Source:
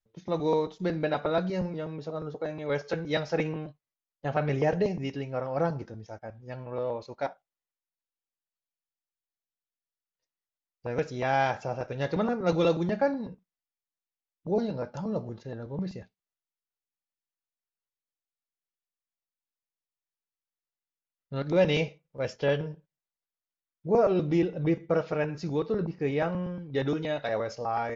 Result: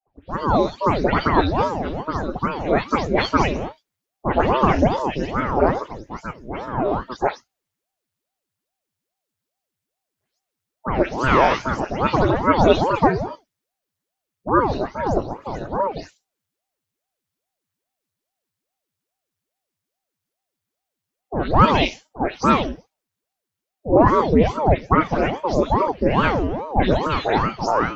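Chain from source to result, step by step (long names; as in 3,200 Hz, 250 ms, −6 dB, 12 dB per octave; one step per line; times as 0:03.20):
every frequency bin delayed by itself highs late, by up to 188 ms
automatic gain control gain up to 12 dB
ring modulator whose carrier an LFO sweeps 440 Hz, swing 80%, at 2.4 Hz
level +2 dB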